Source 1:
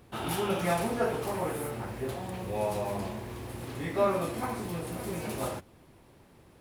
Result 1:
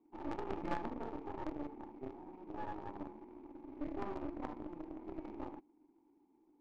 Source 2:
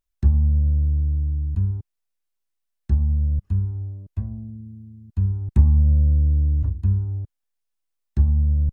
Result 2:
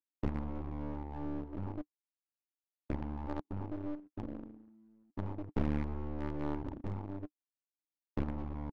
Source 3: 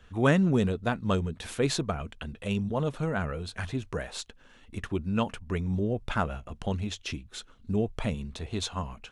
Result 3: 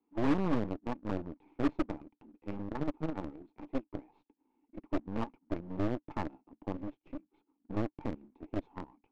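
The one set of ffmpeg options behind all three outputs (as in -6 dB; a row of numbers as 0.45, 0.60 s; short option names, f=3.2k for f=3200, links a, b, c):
-filter_complex "[0:a]acrossover=split=240|4300[a][b][c];[a]acrusher=bits=4:mix=0:aa=0.5[d];[c]acontrast=32[e];[d][b][e]amix=inputs=3:normalize=0,asplit=3[f][g][h];[f]bandpass=f=300:t=q:w=8,volume=0dB[i];[g]bandpass=f=870:t=q:w=8,volume=-6dB[j];[h]bandpass=f=2.24k:t=q:w=8,volume=-9dB[k];[i][j][k]amix=inputs=3:normalize=0,aresample=16000,acrusher=bits=2:mode=log:mix=0:aa=0.000001,aresample=44100,aeval=exprs='0.0708*(cos(1*acos(clip(val(0)/0.0708,-1,1)))-cos(1*PI/2))+0.02*(cos(6*acos(clip(val(0)/0.0708,-1,1)))-cos(6*PI/2))':c=same,adynamicsmooth=sensitivity=2:basefreq=720,volume=3.5dB"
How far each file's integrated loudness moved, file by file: -12.5, -19.0, -7.0 LU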